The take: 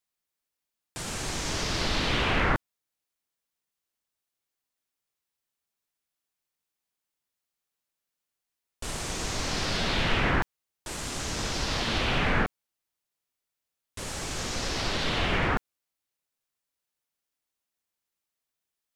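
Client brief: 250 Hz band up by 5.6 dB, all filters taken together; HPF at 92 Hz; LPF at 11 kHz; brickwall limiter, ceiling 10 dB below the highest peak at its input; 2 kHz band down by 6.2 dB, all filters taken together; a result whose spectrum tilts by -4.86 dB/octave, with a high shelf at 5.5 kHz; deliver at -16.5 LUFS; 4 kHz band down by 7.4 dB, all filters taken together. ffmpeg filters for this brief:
-af "highpass=92,lowpass=11000,equalizer=f=250:t=o:g=7.5,equalizer=f=2000:t=o:g=-6,equalizer=f=4000:t=o:g=-5,highshelf=f=5500:g=-6.5,volume=6.68,alimiter=limit=0.531:level=0:latency=1"

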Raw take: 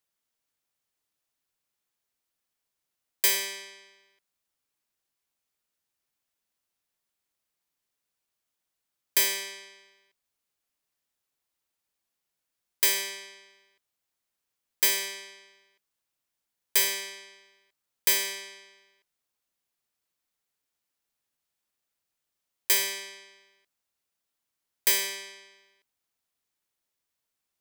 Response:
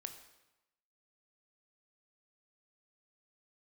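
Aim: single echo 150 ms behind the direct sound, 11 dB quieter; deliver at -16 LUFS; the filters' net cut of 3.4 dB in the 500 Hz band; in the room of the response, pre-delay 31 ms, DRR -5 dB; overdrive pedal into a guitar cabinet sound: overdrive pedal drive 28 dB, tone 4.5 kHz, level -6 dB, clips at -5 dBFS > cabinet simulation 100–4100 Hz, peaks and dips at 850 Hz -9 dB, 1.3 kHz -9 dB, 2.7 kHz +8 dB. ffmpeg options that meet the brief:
-filter_complex "[0:a]equalizer=f=500:t=o:g=-4,aecho=1:1:150:0.282,asplit=2[s0][s1];[1:a]atrim=start_sample=2205,adelay=31[s2];[s1][s2]afir=irnorm=-1:irlink=0,volume=2.66[s3];[s0][s3]amix=inputs=2:normalize=0,asplit=2[s4][s5];[s5]highpass=f=720:p=1,volume=25.1,asoftclip=type=tanh:threshold=0.562[s6];[s4][s6]amix=inputs=2:normalize=0,lowpass=f=4500:p=1,volume=0.501,highpass=100,equalizer=f=850:t=q:w=4:g=-9,equalizer=f=1300:t=q:w=4:g=-9,equalizer=f=2700:t=q:w=4:g=8,lowpass=f=4100:w=0.5412,lowpass=f=4100:w=1.3066,volume=0.944"

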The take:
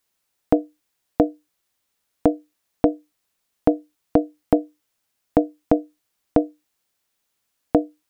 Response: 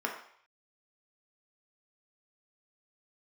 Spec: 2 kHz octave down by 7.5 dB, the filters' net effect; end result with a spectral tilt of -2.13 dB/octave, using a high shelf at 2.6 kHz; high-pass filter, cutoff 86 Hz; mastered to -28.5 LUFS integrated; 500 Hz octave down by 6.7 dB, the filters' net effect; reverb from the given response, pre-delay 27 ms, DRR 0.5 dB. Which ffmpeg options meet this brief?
-filter_complex "[0:a]highpass=86,equalizer=f=500:t=o:g=-7.5,equalizer=f=2000:t=o:g=-7,highshelf=f=2600:g=-6.5,asplit=2[s0][s1];[1:a]atrim=start_sample=2205,adelay=27[s2];[s1][s2]afir=irnorm=-1:irlink=0,volume=0.447[s3];[s0][s3]amix=inputs=2:normalize=0,volume=0.75"

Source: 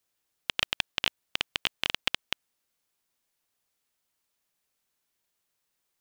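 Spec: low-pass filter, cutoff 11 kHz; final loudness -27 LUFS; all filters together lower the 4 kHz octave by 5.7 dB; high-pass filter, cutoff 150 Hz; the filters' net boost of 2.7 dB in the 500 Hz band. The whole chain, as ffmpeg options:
-af "highpass=150,lowpass=11000,equalizer=f=500:t=o:g=3.5,equalizer=f=4000:t=o:g=-8.5,volume=2.51"

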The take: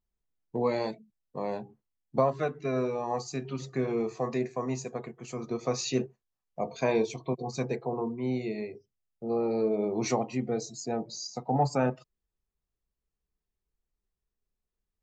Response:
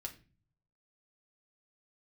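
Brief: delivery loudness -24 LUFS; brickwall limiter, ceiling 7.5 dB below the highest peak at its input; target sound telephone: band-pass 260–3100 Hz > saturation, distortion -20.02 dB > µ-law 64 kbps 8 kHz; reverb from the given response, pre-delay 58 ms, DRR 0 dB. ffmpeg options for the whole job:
-filter_complex "[0:a]alimiter=limit=0.0944:level=0:latency=1,asplit=2[s0][s1];[1:a]atrim=start_sample=2205,adelay=58[s2];[s1][s2]afir=irnorm=-1:irlink=0,volume=1.41[s3];[s0][s3]amix=inputs=2:normalize=0,highpass=260,lowpass=3100,asoftclip=threshold=0.1,volume=2.66" -ar 8000 -c:a pcm_mulaw

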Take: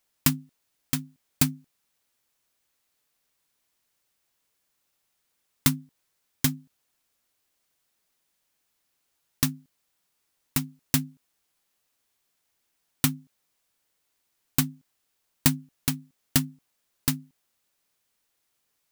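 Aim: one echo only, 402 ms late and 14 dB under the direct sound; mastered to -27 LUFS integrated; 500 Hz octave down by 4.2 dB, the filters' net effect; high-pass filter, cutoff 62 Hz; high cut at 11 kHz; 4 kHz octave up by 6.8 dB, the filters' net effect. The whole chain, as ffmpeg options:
-af "highpass=62,lowpass=11000,equalizer=f=500:t=o:g=-6.5,equalizer=f=4000:t=o:g=8.5,aecho=1:1:402:0.2,volume=1.19"

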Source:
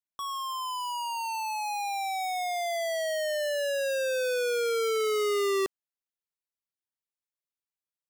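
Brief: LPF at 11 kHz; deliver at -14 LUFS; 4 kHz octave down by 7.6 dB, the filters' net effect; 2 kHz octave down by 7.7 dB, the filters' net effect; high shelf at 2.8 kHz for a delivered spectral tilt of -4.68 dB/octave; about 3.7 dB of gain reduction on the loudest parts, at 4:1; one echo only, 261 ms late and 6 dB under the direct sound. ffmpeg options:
-af "lowpass=11000,equalizer=f=2000:t=o:g=-7.5,highshelf=f=2800:g=-4,equalizer=f=4000:t=o:g=-4,acompressor=threshold=0.0251:ratio=4,aecho=1:1:261:0.501,volume=8.91"

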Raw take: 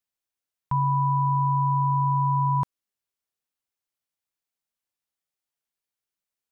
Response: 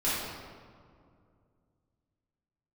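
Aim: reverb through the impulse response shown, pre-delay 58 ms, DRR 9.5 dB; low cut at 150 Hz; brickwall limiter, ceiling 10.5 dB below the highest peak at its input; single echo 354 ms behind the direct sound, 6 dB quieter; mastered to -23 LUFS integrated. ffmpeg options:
-filter_complex "[0:a]highpass=150,alimiter=level_in=1.68:limit=0.0631:level=0:latency=1,volume=0.596,aecho=1:1:354:0.501,asplit=2[s0][s1];[1:a]atrim=start_sample=2205,adelay=58[s2];[s1][s2]afir=irnorm=-1:irlink=0,volume=0.1[s3];[s0][s3]amix=inputs=2:normalize=0,volume=3.98"

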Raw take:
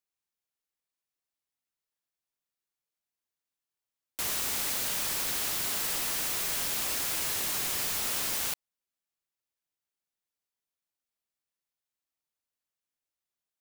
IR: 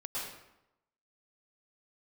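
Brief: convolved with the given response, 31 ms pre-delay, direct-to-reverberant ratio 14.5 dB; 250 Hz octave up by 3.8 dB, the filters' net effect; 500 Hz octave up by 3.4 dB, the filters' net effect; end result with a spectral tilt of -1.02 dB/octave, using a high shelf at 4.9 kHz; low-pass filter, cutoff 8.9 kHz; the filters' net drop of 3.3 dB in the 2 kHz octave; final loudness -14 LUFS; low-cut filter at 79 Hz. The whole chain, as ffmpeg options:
-filter_complex "[0:a]highpass=79,lowpass=8900,equalizer=f=250:t=o:g=4,equalizer=f=500:t=o:g=3.5,equalizer=f=2000:t=o:g=-5.5,highshelf=f=4900:g=5.5,asplit=2[s0][s1];[1:a]atrim=start_sample=2205,adelay=31[s2];[s1][s2]afir=irnorm=-1:irlink=0,volume=0.141[s3];[s0][s3]amix=inputs=2:normalize=0,volume=6.31"

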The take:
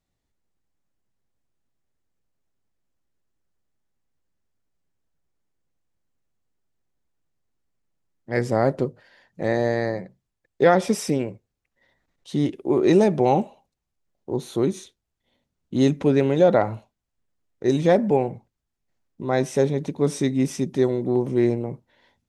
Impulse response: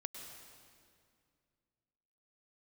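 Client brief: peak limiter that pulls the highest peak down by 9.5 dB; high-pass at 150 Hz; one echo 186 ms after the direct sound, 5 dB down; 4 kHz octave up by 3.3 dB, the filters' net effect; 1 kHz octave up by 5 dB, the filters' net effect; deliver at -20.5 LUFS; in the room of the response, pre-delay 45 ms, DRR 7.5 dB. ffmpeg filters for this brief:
-filter_complex "[0:a]highpass=150,equalizer=f=1000:t=o:g=7.5,equalizer=f=4000:t=o:g=3.5,alimiter=limit=0.299:level=0:latency=1,aecho=1:1:186:0.562,asplit=2[s0][s1];[1:a]atrim=start_sample=2205,adelay=45[s2];[s1][s2]afir=irnorm=-1:irlink=0,volume=0.562[s3];[s0][s3]amix=inputs=2:normalize=0,volume=1.19"

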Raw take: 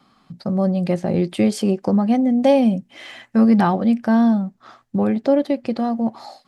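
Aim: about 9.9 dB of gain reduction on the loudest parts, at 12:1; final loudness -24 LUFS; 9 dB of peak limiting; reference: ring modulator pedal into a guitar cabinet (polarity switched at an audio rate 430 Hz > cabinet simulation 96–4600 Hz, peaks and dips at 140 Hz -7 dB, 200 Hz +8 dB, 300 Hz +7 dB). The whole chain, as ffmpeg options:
-af "acompressor=threshold=0.0891:ratio=12,alimiter=limit=0.1:level=0:latency=1,aeval=exprs='val(0)*sgn(sin(2*PI*430*n/s))':c=same,highpass=96,equalizer=f=140:t=q:w=4:g=-7,equalizer=f=200:t=q:w=4:g=8,equalizer=f=300:t=q:w=4:g=7,lowpass=f=4600:w=0.5412,lowpass=f=4600:w=1.3066,volume=1.19"

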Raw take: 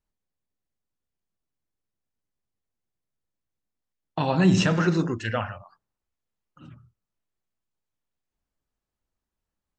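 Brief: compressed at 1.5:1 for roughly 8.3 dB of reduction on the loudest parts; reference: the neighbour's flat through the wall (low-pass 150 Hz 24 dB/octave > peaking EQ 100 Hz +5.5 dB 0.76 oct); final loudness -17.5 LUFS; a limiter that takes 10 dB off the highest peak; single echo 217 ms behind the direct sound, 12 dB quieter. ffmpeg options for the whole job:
-af "acompressor=threshold=0.0126:ratio=1.5,alimiter=level_in=1.19:limit=0.0631:level=0:latency=1,volume=0.841,lowpass=f=150:w=0.5412,lowpass=f=150:w=1.3066,equalizer=f=100:t=o:w=0.76:g=5.5,aecho=1:1:217:0.251,volume=15"

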